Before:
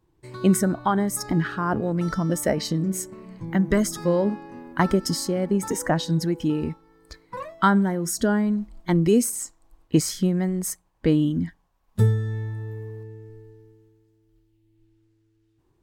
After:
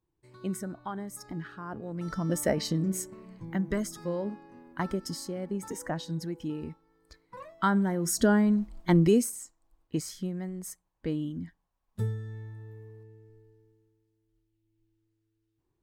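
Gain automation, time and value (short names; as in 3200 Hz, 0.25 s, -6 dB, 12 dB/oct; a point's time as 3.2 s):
1.78 s -15 dB
2.36 s -4 dB
2.9 s -4 dB
3.97 s -11 dB
7.36 s -11 dB
8.18 s -1 dB
9.03 s -1 dB
9.44 s -12 dB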